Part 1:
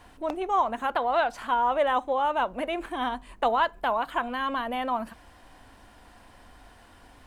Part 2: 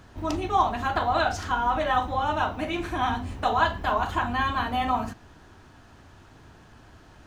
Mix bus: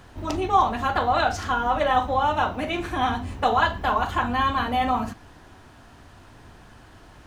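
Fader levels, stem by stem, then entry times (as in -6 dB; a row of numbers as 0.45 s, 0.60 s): -2.0 dB, +1.5 dB; 0.00 s, 0.00 s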